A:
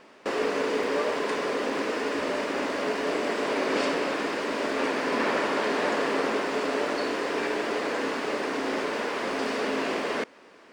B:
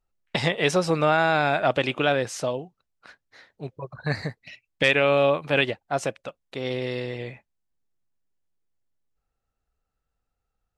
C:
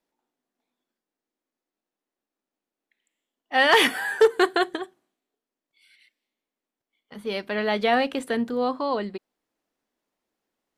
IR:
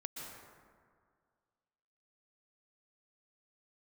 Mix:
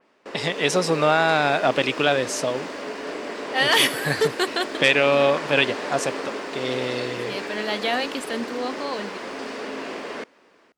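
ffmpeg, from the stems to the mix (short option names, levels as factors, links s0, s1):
-filter_complex "[0:a]equalizer=f=13000:t=o:w=0.72:g=-4,volume=0.335[s0];[1:a]highpass=150,volume=0.668[s1];[2:a]adynamicequalizer=threshold=0.02:dfrequency=1900:dqfactor=0.7:tfrequency=1900:tqfactor=0.7:attack=5:release=100:ratio=0.375:range=3:mode=boostabove:tftype=highshelf,volume=0.316[s2];[s0][s1][s2]amix=inputs=3:normalize=0,dynaudnorm=f=410:g=3:m=1.88,adynamicequalizer=threshold=0.0141:dfrequency=3200:dqfactor=0.7:tfrequency=3200:tqfactor=0.7:attack=5:release=100:ratio=0.375:range=2.5:mode=boostabove:tftype=highshelf"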